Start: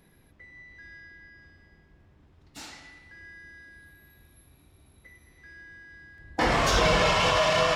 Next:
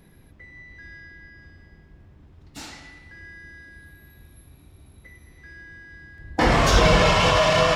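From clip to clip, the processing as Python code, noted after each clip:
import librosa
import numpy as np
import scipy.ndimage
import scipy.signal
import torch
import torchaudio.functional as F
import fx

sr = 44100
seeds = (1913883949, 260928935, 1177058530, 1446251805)

y = fx.low_shelf(x, sr, hz=300.0, db=6.0)
y = F.gain(torch.from_numpy(y), 3.5).numpy()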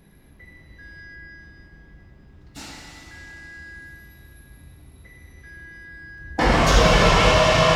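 y = fx.rev_plate(x, sr, seeds[0], rt60_s=3.5, hf_ratio=0.95, predelay_ms=0, drr_db=0.5)
y = F.gain(torch.from_numpy(y), -1.0).numpy()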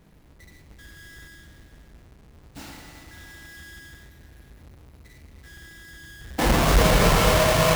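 y = fx.halfwave_hold(x, sr)
y = F.gain(torch.from_numpy(y), -7.0).numpy()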